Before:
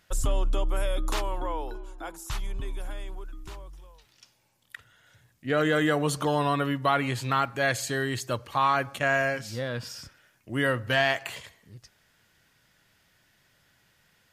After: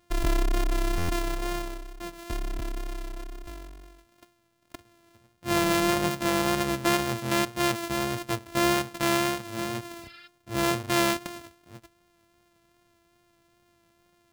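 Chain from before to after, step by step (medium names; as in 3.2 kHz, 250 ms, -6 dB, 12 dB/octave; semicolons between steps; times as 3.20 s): sorted samples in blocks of 128 samples; spectral replace 10.04–10.25 s, 1.1–5.4 kHz before; wow and flutter 22 cents; buffer glitch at 0.97 s, samples 512, times 9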